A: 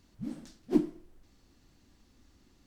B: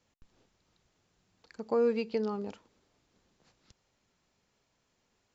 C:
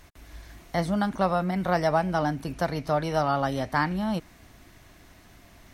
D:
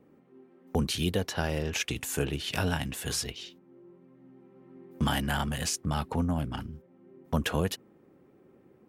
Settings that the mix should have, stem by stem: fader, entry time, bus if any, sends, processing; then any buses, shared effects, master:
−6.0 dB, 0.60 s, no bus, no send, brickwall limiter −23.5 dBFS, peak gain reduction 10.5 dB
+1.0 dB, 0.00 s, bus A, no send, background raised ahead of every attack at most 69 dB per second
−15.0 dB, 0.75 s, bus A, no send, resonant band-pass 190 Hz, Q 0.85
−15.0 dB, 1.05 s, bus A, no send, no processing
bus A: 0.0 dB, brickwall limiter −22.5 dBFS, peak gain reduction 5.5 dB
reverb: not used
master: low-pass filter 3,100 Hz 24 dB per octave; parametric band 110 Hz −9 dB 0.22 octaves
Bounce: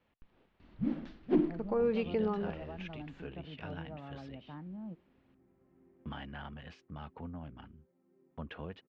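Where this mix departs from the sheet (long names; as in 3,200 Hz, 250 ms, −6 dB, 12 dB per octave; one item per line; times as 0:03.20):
stem A −6.0 dB → +5.5 dB
stem B: missing background raised ahead of every attack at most 69 dB per second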